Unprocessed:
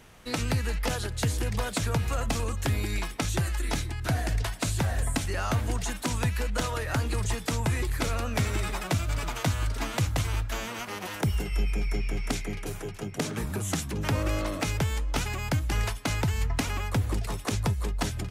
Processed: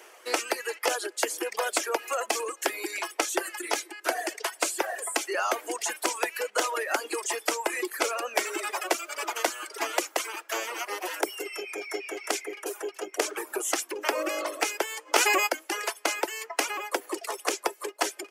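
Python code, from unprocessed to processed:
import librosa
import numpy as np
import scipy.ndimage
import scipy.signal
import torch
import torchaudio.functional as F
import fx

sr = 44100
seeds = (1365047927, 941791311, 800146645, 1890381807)

y = fx.env_flatten(x, sr, amount_pct=100, at=(15.05, 15.46), fade=0.02)
y = scipy.signal.sosfilt(scipy.signal.cheby1(5, 1.0, 340.0, 'highpass', fs=sr, output='sos'), y)
y = fx.peak_eq(y, sr, hz=3800.0, db=-8.0, octaves=0.3)
y = fx.dereverb_blind(y, sr, rt60_s=1.4)
y = y * 10.0 ** (6.5 / 20.0)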